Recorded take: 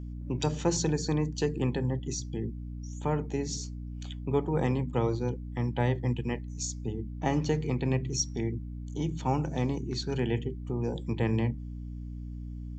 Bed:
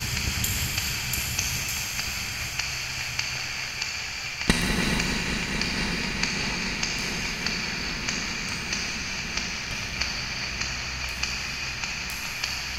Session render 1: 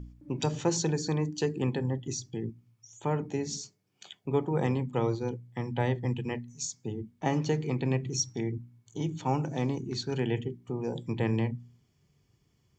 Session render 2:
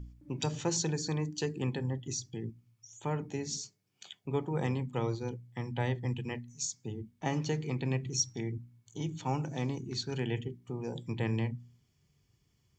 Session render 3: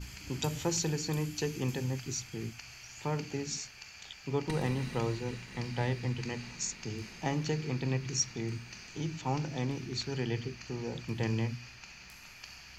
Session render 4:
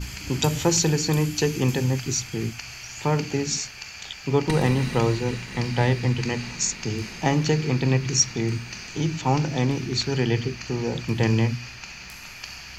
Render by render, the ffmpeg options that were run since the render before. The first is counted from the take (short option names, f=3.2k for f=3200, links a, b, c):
-af "bandreject=f=60:t=h:w=4,bandreject=f=120:t=h:w=4,bandreject=f=180:t=h:w=4,bandreject=f=240:t=h:w=4,bandreject=f=300:t=h:w=4"
-af "equalizer=f=440:w=0.31:g=-5.5"
-filter_complex "[1:a]volume=-19.5dB[a];[0:a][a]amix=inputs=2:normalize=0"
-af "volume=11dB"